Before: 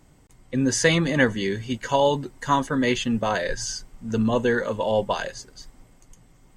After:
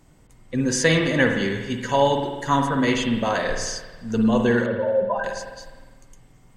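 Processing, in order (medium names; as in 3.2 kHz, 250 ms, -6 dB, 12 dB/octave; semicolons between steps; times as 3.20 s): 4.66–5.24 s: spectral contrast enhancement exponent 3; spring tank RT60 1.3 s, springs 50 ms, chirp 35 ms, DRR 3.5 dB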